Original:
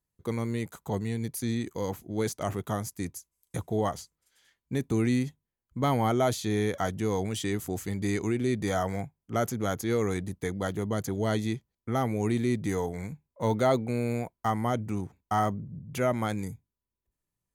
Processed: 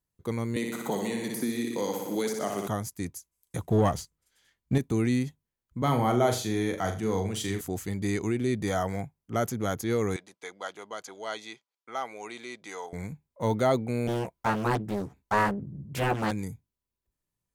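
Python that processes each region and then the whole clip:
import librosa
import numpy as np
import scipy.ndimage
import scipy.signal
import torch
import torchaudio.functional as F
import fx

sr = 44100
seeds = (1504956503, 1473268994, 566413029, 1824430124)

y = fx.chain(x, sr, fx.highpass(hz=190.0, slope=24),
    fx.room_flutter(wall_m=10.2, rt60_s=0.87),
    fx.band_squash(depth_pct=100), at=(0.56, 2.68))
y = fx.chain(y, sr, fx.low_shelf(hz=240.0, db=7.0),
    fx.leveller(passes=1), at=(3.63, 4.78))
y = fx.chain(y, sr, fx.room_flutter(wall_m=7.1, rt60_s=0.37),
    fx.band_widen(depth_pct=40), at=(5.82, 7.61))
y = fx.chain(y, sr, fx.bandpass_edges(low_hz=790.0, high_hz=6500.0),
    fx.notch(hz=1800.0, q=8.8), at=(10.16, 12.93))
y = fx.chain(y, sr, fx.doubler(ms=15.0, db=-2),
    fx.doppler_dist(depth_ms=0.99), at=(14.07, 16.31))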